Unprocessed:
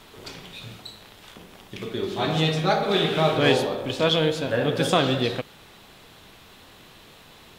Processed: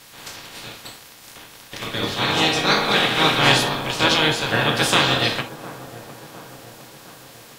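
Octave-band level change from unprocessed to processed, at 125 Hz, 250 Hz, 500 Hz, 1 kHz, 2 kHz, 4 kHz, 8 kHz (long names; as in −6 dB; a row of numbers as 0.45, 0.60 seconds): 0.0, +0.5, −1.5, +5.5, +9.5, +8.0, +11.0 decibels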